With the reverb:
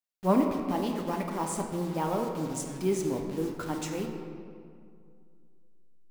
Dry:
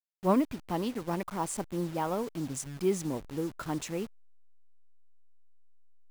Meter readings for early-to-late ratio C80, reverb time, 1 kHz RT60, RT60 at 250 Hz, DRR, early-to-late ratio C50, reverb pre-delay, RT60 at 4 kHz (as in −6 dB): 5.5 dB, 2.3 s, 2.2 s, 2.6 s, 2.0 dB, 4.5 dB, 3 ms, 1.3 s